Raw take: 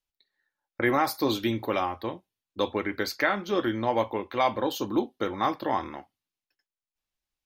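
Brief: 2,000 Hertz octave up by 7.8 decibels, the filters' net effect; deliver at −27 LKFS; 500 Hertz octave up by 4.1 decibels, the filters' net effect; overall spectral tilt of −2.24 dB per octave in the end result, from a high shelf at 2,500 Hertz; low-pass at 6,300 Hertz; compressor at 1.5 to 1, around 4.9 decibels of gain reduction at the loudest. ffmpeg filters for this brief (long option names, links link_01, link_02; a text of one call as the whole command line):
ffmpeg -i in.wav -af "lowpass=6300,equalizer=frequency=500:width_type=o:gain=4.5,equalizer=frequency=2000:width_type=o:gain=6.5,highshelf=frequency=2500:gain=6,acompressor=threshold=-27dB:ratio=1.5,volume=0.5dB" out.wav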